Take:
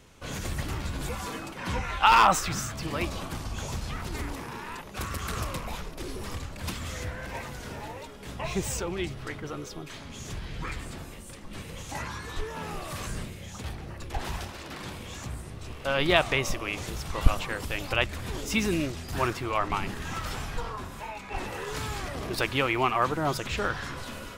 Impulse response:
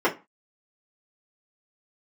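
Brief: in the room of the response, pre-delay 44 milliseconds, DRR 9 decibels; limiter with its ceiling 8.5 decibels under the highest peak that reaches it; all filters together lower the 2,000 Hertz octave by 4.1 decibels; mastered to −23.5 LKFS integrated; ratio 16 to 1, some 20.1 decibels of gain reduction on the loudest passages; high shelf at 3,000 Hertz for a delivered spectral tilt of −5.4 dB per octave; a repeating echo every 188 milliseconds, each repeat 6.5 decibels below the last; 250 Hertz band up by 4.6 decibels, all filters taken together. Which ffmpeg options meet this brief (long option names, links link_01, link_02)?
-filter_complex "[0:a]equalizer=frequency=250:width_type=o:gain=6.5,equalizer=frequency=2000:width_type=o:gain=-4,highshelf=frequency=3000:gain=-4,acompressor=threshold=-32dB:ratio=16,alimiter=level_in=5dB:limit=-24dB:level=0:latency=1,volume=-5dB,aecho=1:1:188|376|564|752|940|1128:0.473|0.222|0.105|0.0491|0.0231|0.0109,asplit=2[link_01][link_02];[1:a]atrim=start_sample=2205,adelay=44[link_03];[link_02][link_03]afir=irnorm=-1:irlink=0,volume=-25.5dB[link_04];[link_01][link_04]amix=inputs=2:normalize=0,volume=14dB"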